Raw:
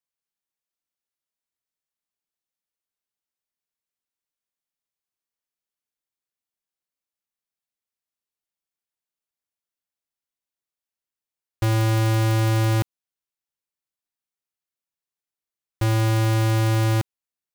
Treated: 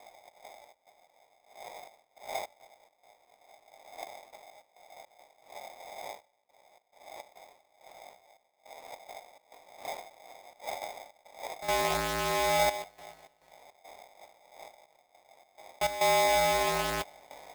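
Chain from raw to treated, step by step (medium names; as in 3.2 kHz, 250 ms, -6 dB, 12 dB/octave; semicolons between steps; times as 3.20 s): wind noise 130 Hz -35 dBFS; chorus 0.62 Hz, delay 18.5 ms, depth 3.5 ms; on a send: multi-head delay 95 ms, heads second and third, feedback 49%, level -23.5 dB; on the sum: trance gate "xx.xx.xxxxxxx.." 104 bpm -12 dB; polarity switched at an audio rate 720 Hz; trim -4.5 dB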